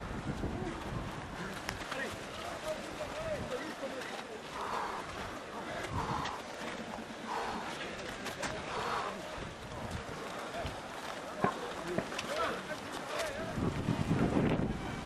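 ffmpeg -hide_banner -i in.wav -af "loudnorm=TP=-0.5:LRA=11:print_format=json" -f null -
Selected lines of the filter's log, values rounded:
"input_i" : "-37.4",
"input_tp" : "-15.9",
"input_lra" : "4.7",
"input_thresh" : "-47.4",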